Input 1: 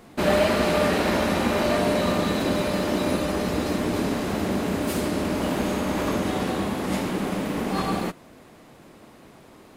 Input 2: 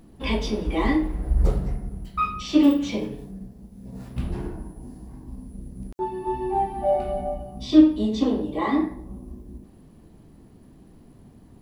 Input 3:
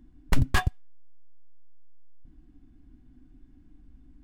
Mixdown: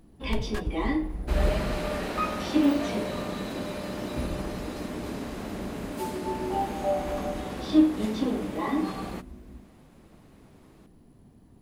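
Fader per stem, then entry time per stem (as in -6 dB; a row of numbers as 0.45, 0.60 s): -10.0, -5.5, -12.0 dB; 1.10, 0.00, 0.00 s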